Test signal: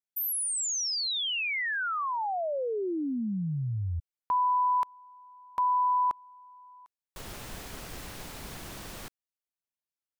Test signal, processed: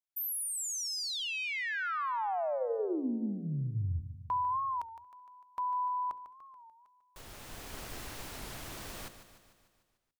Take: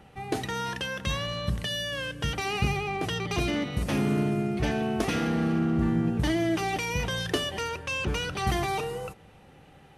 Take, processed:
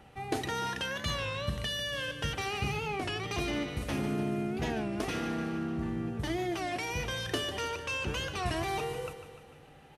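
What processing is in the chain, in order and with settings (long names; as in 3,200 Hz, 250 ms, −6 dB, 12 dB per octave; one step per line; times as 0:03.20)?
parametric band 180 Hz −9 dB 0.21 octaves
mains-hum notches 60/120/180/240/300/360/420/480/540 Hz
speech leveller within 3 dB 0.5 s
on a send: repeating echo 149 ms, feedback 58%, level −11.5 dB
on the sum: wow of a warped record 33 1/3 rpm, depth 160 cents
level −4.5 dB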